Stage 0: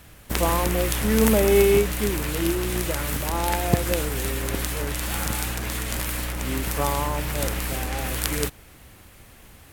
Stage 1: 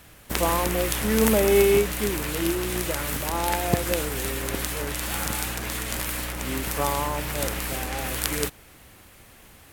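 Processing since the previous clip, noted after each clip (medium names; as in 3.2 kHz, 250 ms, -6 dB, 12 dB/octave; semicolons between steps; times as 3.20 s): bass shelf 170 Hz -5.5 dB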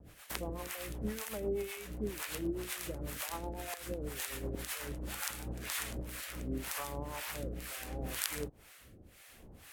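compression 5:1, threshold -31 dBFS, peak gain reduction 15 dB; rotary cabinet horn 8 Hz, later 0.75 Hz, at 4.95 s; harmonic tremolo 2 Hz, depth 100%, crossover 690 Hz; trim +1 dB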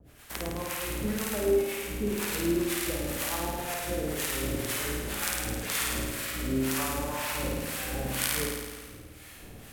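level rider gain up to 5.5 dB; hard clipper -12 dBFS, distortion -29 dB; flutter echo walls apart 9.1 m, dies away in 1.4 s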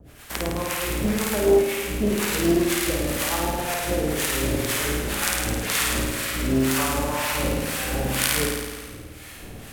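loudspeaker Doppler distortion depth 0.41 ms; trim +7.5 dB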